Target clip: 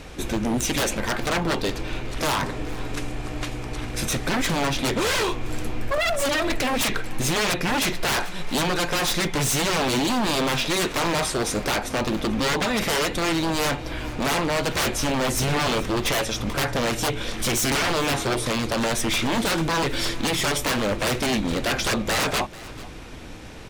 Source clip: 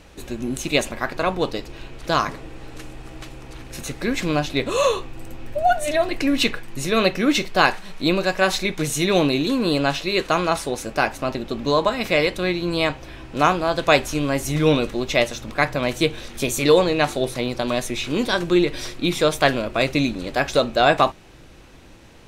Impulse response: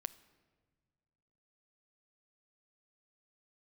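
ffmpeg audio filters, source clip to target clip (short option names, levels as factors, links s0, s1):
-filter_complex "[0:a]asplit=2[s0][s1];[s1]acompressor=threshold=0.0562:ratio=6,volume=1.33[s2];[s0][s2]amix=inputs=2:normalize=0,asetrate=41454,aresample=44100,aeval=exprs='0.133*(abs(mod(val(0)/0.133+3,4)-2)-1)':c=same,aecho=1:1:439:0.112"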